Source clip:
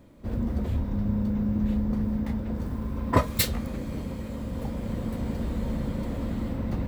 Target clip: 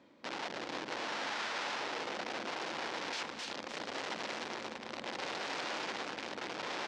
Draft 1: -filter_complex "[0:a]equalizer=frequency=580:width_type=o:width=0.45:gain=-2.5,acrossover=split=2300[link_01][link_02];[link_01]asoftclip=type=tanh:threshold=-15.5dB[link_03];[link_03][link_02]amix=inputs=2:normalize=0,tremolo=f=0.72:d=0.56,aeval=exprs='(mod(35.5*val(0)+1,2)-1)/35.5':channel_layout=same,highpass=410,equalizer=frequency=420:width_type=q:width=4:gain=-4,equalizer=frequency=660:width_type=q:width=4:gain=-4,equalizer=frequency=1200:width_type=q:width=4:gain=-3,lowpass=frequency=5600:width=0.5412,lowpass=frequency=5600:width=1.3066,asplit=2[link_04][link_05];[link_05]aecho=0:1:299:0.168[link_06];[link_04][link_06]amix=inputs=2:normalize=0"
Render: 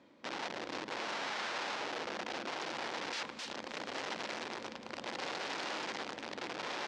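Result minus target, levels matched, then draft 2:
soft clipping: distortion +11 dB; echo-to-direct −8 dB
-filter_complex "[0:a]equalizer=frequency=580:width_type=o:width=0.45:gain=-2.5,acrossover=split=2300[link_01][link_02];[link_01]asoftclip=type=tanh:threshold=-7dB[link_03];[link_03][link_02]amix=inputs=2:normalize=0,tremolo=f=0.72:d=0.56,aeval=exprs='(mod(35.5*val(0)+1,2)-1)/35.5':channel_layout=same,highpass=410,equalizer=frequency=420:width_type=q:width=4:gain=-4,equalizer=frequency=660:width_type=q:width=4:gain=-4,equalizer=frequency=1200:width_type=q:width=4:gain=-3,lowpass=frequency=5600:width=0.5412,lowpass=frequency=5600:width=1.3066,asplit=2[link_04][link_05];[link_05]aecho=0:1:299:0.422[link_06];[link_04][link_06]amix=inputs=2:normalize=0"

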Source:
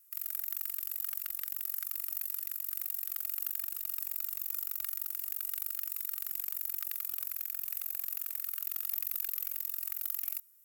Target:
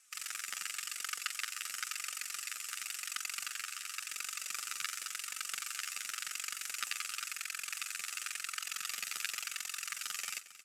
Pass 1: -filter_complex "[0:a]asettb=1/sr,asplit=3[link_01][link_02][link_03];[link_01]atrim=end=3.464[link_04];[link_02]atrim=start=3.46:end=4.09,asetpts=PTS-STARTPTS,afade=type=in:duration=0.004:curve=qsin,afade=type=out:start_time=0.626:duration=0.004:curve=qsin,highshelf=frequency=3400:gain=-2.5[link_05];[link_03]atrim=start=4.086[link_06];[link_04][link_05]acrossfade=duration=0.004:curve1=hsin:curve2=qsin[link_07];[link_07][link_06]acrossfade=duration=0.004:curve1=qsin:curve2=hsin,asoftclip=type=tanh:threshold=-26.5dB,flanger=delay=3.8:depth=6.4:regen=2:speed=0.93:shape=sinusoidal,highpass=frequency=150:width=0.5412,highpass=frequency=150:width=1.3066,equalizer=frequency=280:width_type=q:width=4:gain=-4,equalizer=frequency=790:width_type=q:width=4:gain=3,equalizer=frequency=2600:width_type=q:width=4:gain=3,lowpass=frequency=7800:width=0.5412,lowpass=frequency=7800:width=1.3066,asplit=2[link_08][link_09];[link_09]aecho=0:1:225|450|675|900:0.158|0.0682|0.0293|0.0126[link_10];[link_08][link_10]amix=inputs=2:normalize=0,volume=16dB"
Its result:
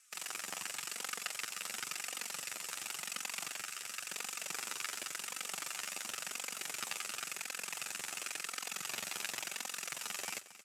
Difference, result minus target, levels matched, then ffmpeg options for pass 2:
soft clipping: distortion +17 dB
-filter_complex "[0:a]asettb=1/sr,asplit=3[link_01][link_02][link_03];[link_01]atrim=end=3.464[link_04];[link_02]atrim=start=3.46:end=4.09,asetpts=PTS-STARTPTS,afade=type=in:duration=0.004:curve=qsin,afade=type=out:start_time=0.626:duration=0.004:curve=qsin,highshelf=frequency=3400:gain=-2.5[link_05];[link_03]atrim=start=4.086[link_06];[link_04][link_05]acrossfade=duration=0.004:curve1=hsin:curve2=qsin[link_07];[link_07][link_06]acrossfade=duration=0.004:curve1=qsin:curve2=hsin,asoftclip=type=tanh:threshold=-15.5dB,flanger=delay=3.8:depth=6.4:regen=2:speed=0.93:shape=sinusoidal,highpass=frequency=150:width=0.5412,highpass=frequency=150:width=1.3066,equalizer=frequency=280:width_type=q:width=4:gain=-4,equalizer=frequency=790:width_type=q:width=4:gain=3,equalizer=frequency=2600:width_type=q:width=4:gain=3,lowpass=frequency=7800:width=0.5412,lowpass=frequency=7800:width=1.3066,asplit=2[link_08][link_09];[link_09]aecho=0:1:225|450|675|900:0.158|0.0682|0.0293|0.0126[link_10];[link_08][link_10]amix=inputs=2:normalize=0,volume=16dB"

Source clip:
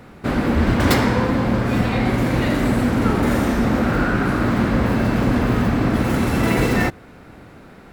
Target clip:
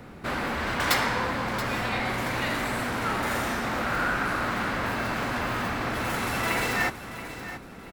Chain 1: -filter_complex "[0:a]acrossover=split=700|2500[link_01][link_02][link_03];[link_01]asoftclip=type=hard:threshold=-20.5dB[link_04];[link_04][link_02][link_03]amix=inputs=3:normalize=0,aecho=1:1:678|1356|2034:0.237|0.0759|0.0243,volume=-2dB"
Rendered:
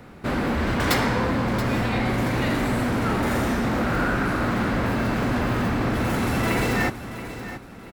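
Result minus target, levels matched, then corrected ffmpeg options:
hard clipping: distortion −4 dB
-filter_complex "[0:a]acrossover=split=700|2500[link_01][link_02][link_03];[link_01]asoftclip=type=hard:threshold=-31.5dB[link_04];[link_04][link_02][link_03]amix=inputs=3:normalize=0,aecho=1:1:678|1356|2034:0.237|0.0759|0.0243,volume=-2dB"

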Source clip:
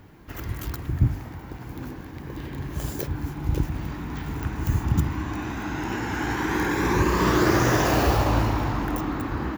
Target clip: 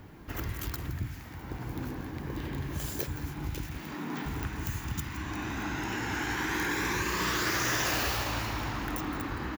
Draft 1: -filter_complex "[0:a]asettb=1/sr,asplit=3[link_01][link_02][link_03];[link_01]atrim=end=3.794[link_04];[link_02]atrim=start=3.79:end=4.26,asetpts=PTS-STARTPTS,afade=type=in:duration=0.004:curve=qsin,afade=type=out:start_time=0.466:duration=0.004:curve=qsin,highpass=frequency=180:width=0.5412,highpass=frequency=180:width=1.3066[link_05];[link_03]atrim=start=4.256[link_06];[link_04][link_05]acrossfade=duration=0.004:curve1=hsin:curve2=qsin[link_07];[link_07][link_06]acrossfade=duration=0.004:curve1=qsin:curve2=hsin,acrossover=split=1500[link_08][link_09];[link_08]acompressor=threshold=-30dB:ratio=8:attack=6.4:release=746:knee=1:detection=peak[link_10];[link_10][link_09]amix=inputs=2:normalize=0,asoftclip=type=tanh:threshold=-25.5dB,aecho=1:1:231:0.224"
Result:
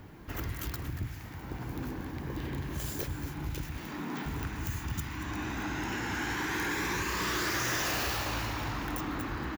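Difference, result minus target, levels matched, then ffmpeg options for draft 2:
soft clipping: distortion +14 dB; echo 63 ms late
-filter_complex "[0:a]asettb=1/sr,asplit=3[link_01][link_02][link_03];[link_01]atrim=end=3.794[link_04];[link_02]atrim=start=3.79:end=4.26,asetpts=PTS-STARTPTS,afade=type=in:duration=0.004:curve=qsin,afade=type=out:start_time=0.466:duration=0.004:curve=qsin,highpass=frequency=180:width=0.5412,highpass=frequency=180:width=1.3066[link_05];[link_03]atrim=start=4.256[link_06];[link_04][link_05]acrossfade=duration=0.004:curve1=hsin:curve2=qsin[link_07];[link_07][link_06]acrossfade=duration=0.004:curve1=qsin:curve2=hsin,acrossover=split=1500[link_08][link_09];[link_08]acompressor=threshold=-30dB:ratio=8:attack=6.4:release=746:knee=1:detection=peak[link_10];[link_10][link_09]amix=inputs=2:normalize=0,asoftclip=type=tanh:threshold=-16dB,aecho=1:1:168:0.224"

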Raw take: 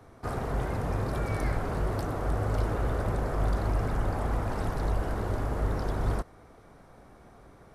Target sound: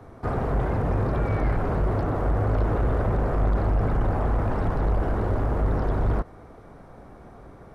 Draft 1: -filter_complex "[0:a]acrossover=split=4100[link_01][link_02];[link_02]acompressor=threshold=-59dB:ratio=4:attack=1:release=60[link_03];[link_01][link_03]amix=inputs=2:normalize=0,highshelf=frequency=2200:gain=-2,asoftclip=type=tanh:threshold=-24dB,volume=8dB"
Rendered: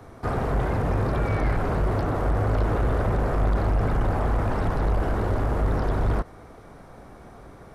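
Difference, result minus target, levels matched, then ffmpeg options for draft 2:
4,000 Hz band +5.5 dB
-filter_complex "[0:a]acrossover=split=4100[link_01][link_02];[link_02]acompressor=threshold=-59dB:ratio=4:attack=1:release=60[link_03];[link_01][link_03]amix=inputs=2:normalize=0,highshelf=frequency=2200:gain=-10.5,asoftclip=type=tanh:threshold=-24dB,volume=8dB"

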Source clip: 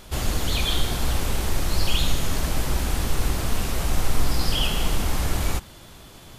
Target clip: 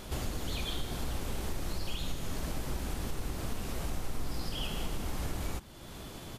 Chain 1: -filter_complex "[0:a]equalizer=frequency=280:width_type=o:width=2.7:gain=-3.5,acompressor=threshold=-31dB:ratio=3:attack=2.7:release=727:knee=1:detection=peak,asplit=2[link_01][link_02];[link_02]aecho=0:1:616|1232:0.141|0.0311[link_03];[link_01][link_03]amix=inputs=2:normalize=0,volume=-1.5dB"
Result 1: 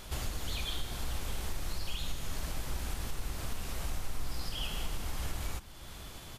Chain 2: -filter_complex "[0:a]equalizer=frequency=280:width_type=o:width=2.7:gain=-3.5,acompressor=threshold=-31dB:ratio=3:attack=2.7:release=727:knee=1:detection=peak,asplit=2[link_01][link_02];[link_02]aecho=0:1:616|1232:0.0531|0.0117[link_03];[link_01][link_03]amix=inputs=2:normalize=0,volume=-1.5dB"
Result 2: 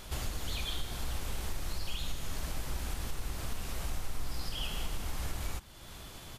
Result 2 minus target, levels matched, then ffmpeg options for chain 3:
250 Hz band −5.5 dB
-filter_complex "[0:a]equalizer=frequency=280:width_type=o:width=2.7:gain=4.5,acompressor=threshold=-31dB:ratio=3:attack=2.7:release=727:knee=1:detection=peak,asplit=2[link_01][link_02];[link_02]aecho=0:1:616|1232:0.0531|0.0117[link_03];[link_01][link_03]amix=inputs=2:normalize=0,volume=-1.5dB"

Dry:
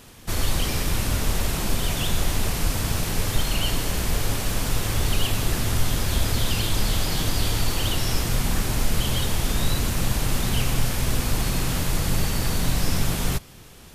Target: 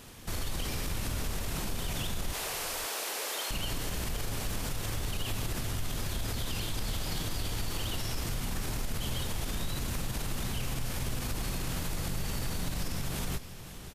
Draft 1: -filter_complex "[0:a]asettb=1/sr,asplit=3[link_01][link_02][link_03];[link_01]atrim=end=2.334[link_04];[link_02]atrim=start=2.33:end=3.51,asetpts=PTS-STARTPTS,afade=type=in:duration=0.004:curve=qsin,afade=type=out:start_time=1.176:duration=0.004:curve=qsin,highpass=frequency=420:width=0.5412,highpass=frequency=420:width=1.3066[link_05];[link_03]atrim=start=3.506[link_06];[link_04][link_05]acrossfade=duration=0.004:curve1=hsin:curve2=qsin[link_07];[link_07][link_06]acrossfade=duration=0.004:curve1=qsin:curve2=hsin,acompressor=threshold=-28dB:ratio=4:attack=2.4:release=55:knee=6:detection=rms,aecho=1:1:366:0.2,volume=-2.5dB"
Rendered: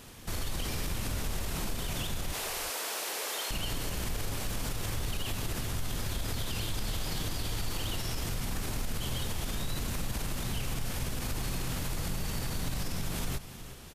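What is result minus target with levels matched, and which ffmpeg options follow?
echo 160 ms early
-filter_complex "[0:a]asettb=1/sr,asplit=3[link_01][link_02][link_03];[link_01]atrim=end=2.334[link_04];[link_02]atrim=start=2.33:end=3.51,asetpts=PTS-STARTPTS,afade=type=in:duration=0.004:curve=qsin,afade=type=out:start_time=1.176:duration=0.004:curve=qsin,highpass=frequency=420:width=0.5412,highpass=frequency=420:width=1.3066[link_05];[link_03]atrim=start=3.506[link_06];[link_04][link_05]acrossfade=duration=0.004:curve1=hsin:curve2=qsin[link_07];[link_07][link_06]acrossfade=duration=0.004:curve1=qsin:curve2=hsin,acompressor=threshold=-28dB:ratio=4:attack=2.4:release=55:knee=6:detection=rms,aecho=1:1:526:0.2,volume=-2.5dB"

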